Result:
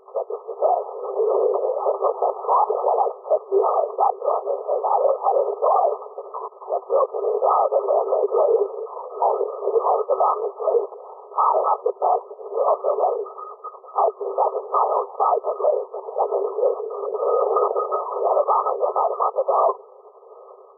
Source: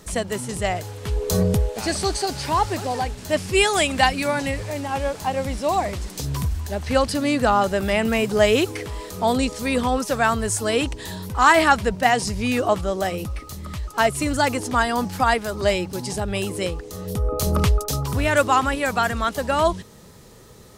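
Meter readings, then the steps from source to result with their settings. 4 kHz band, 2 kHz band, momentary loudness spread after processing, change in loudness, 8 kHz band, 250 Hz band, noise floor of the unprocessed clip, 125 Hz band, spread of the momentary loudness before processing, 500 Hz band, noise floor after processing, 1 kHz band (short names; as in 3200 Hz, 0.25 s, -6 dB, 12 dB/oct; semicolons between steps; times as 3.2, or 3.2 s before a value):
under -40 dB, under -40 dB, 10 LU, 0.0 dB, under -40 dB, under -10 dB, -41 dBFS, under -40 dB, 10 LU, +3.5 dB, -45 dBFS, +2.0 dB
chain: AGC; LPC vocoder at 8 kHz whisper; FFT band-pass 380–1300 Hz; limiter -11 dBFS, peak gain reduction 10 dB; gain +1.5 dB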